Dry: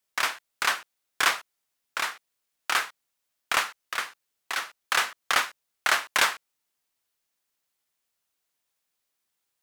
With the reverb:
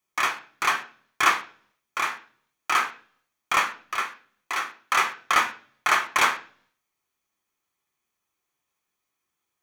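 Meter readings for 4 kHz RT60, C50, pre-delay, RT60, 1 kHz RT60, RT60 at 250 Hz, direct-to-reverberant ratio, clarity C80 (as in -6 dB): 0.45 s, 14.0 dB, 3 ms, 0.45 s, 0.40 s, 0.65 s, 2.0 dB, 18.5 dB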